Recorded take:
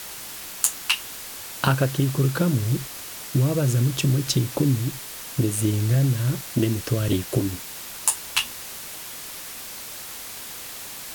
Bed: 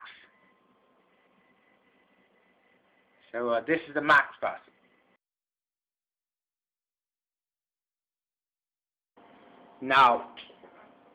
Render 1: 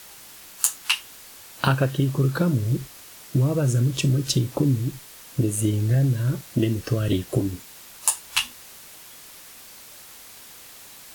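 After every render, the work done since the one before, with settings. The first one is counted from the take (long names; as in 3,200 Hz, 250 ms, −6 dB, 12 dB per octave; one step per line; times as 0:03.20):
noise reduction from a noise print 8 dB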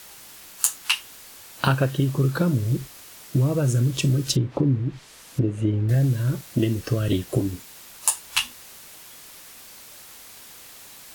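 0:04.35–0:05.89: treble cut that deepens with the level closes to 1,900 Hz, closed at −19.5 dBFS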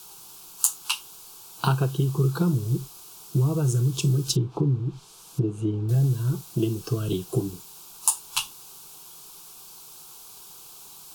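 phaser with its sweep stopped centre 380 Hz, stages 8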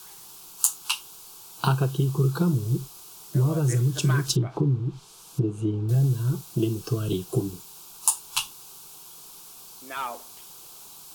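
mix in bed −13 dB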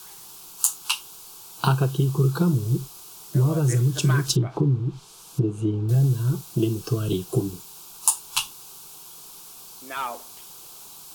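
level +2 dB
brickwall limiter −2 dBFS, peak gain reduction 2 dB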